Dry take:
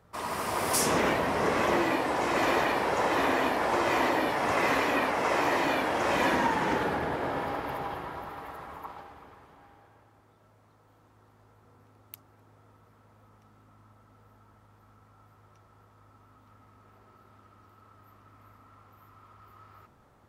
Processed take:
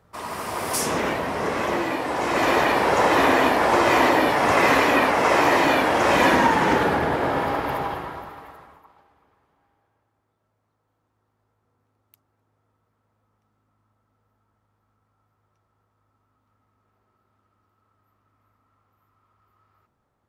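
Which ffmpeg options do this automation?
ffmpeg -i in.wav -af "volume=8.5dB,afade=type=in:start_time=1.98:duration=0.94:silence=0.446684,afade=type=out:start_time=7.77:duration=0.55:silence=0.421697,afade=type=out:start_time=8.32:duration=0.52:silence=0.223872" out.wav

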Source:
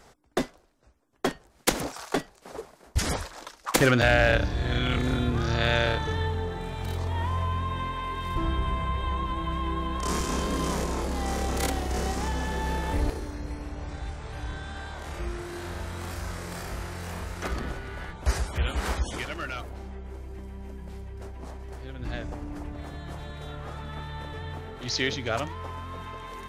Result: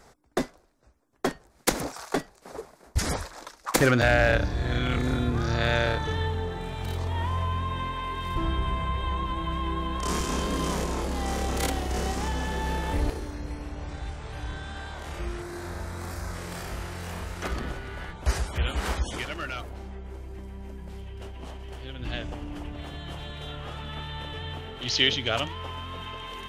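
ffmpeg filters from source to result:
ffmpeg -i in.wav -af "asetnsamples=nb_out_samples=441:pad=0,asendcmd='6.04 equalizer g 2.5;15.42 equalizer g -8.5;16.35 equalizer g 2.5;20.98 equalizer g 13',equalizer=frequency=3000:width_type=o:width=0.46:gain=-5" out.wav

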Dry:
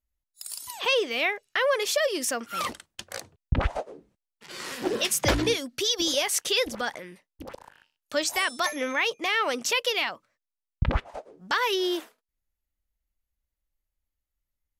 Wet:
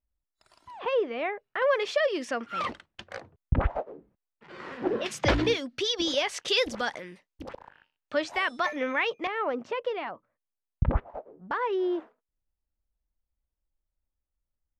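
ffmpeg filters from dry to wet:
ffmpeg -i in.wav -af "asetnsamples=nb_out_samples=441:pad=0,asendcmd='1.62 lowpass f 2800;3.17 lowpass f 1600;5.06 lowpass f 3700;6.48 lowpass f 6400;7.53 lowpass f 2500;9.27 lowpass f 1100',lowpass=1300" out.wav

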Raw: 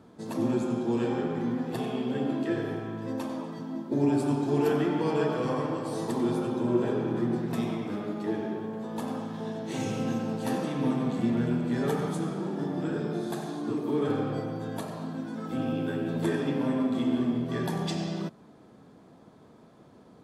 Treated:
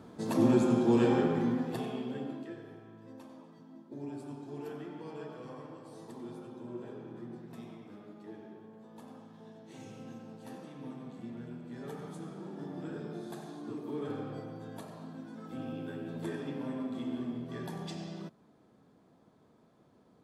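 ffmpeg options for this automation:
ffmpeg -i in.wav -af "volume=9.5dB,afade=type=out:start_time=1.15:duration=0.67:silence=0.421697,afade=type=out:start_time=1.82:duration=0.75:silence=0.251189,afade=type=in:start_time=11.63:duration=1.14:silence=0.446684" out.wav

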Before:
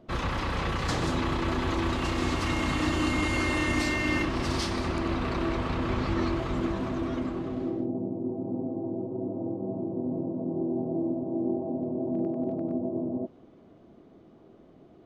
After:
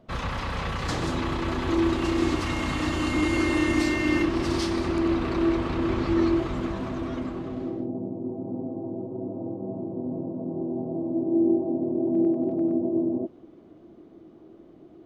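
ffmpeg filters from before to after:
ffmpeg -i in.wav -af "asetnsamples=nb_out_samples=441:pad=0,asendcmd='0.82 equalizer g 1.5;1.68 equalizer g 10;2.41 equalizer g 0.5;3.14 equalizer g 9.5;6.47 equalizer g -1;11.14 equalizer g 10',equalizer=frequency=330:width_type=o:width=0.34:gain=-8.5" out.wav

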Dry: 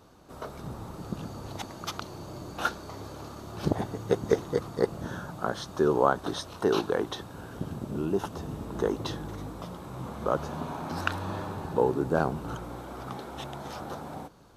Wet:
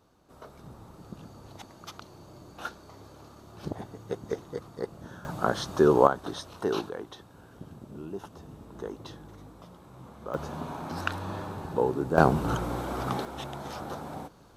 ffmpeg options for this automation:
ffmpeg -i in.wav -af "asetnsamples=nb_out_samples=441:pad=0,asendcmd='5.25 volume volume 4dB;6.07 volume volume -3.5dB;6.89 volume volume -10dB;10.34 volume volume -1.5dB;12.18 volume volume 7.5dB;13.25 volume volume 0.5dB',volume=-8.5dB" out.wav

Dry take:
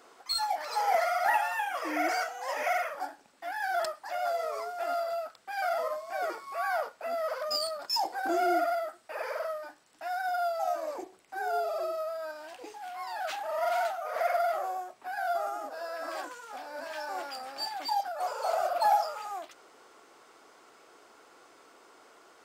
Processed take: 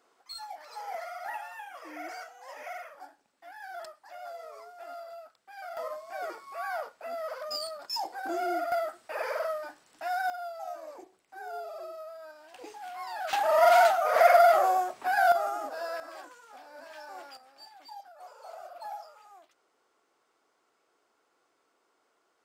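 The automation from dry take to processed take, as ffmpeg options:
ffmpeg -i in.wav -af "asetnsamples=nb_out_samples=441:pad=0,asendcmd='5.77 volume volume -4dB;8.72 volume volume 2.5dB;10.3 volume volume -8.5dB;12.54 volume volume -0.5dB;13.33 volume volume 9.5dB;15.32 volume volume 2.5dB;16 volume volume -8dB;17.37 volume volume -16dB',volume=-11.5dB" out.wav

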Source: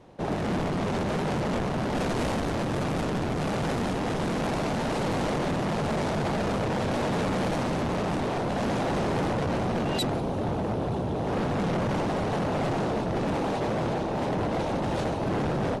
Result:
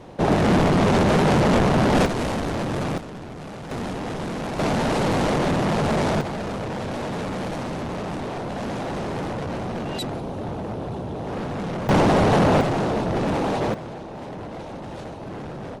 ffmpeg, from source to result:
ffmpeg -i in.wav -af "asetnsamples=nb_out_samples=441:pad=0,asendcmd='2.06 volume volume 2.5dB;2.98 volume volume -8dB;3.71 volume volume -1dB;4.59 volume volume 6dB;6.21 volume volume -1.5dB;11.89 volume volume 10.5dB;12.61 volume volume 4.5dB;13.74 volume volume -7dB',volume=10dB" out.wav

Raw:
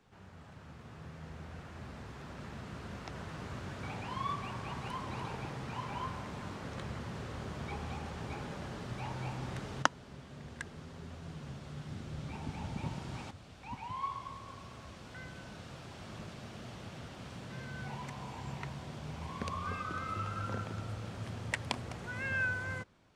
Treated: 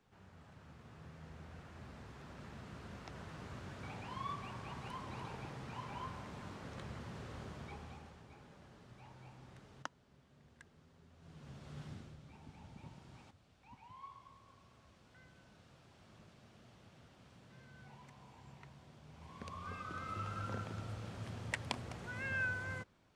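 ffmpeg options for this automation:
ffmpeg -i in.wav -af "volume=18dB,afade=type=out:start_time=7.39:duration=0.85:silence=0.281838,afade=type=in:start_time=11.14:duration=0.69:silence=0.223872,afade=type=out:start_time=11.83:duration=0.35:silence=0.281838,afade=type=in:start_time=19.09:duration=1.22:silence=0.281838" out.wav

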